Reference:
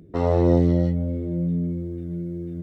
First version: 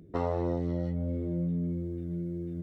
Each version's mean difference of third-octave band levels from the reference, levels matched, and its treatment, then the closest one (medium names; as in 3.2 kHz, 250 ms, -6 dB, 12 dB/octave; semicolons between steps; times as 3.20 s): 2.5 dB: dynamic bell 1.1 kHz, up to +6 dB, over -38 dBFS, Q 0.84; compression 6:1, threshold -22 dBFS, peak gain reduction 10.5 dB; trim -4.5 dB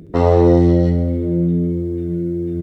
1.5 dB: in parallel at +2 dB: peak limiter -14 dBFS, peak gain reduction 8 dB; on the sum: feedback delay 67 ms, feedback 59%, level -9 dB; trim +1.5 dB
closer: second